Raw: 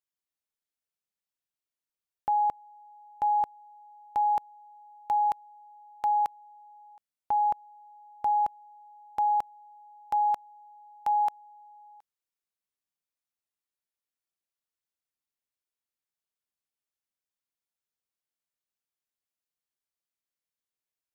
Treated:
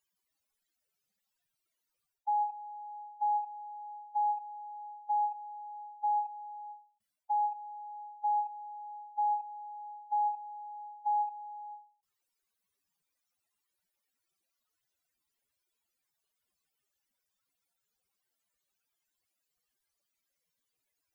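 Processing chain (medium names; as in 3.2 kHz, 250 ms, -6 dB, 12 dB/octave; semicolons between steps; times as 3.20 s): spectral contrast enhancement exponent 3.4; reverse; compression 10:1, threshold -36 dBFS, peak gain reduction 12.5 dB; reverse; endings held to a fixed fall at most 140 dB/s; trim +8.5 dB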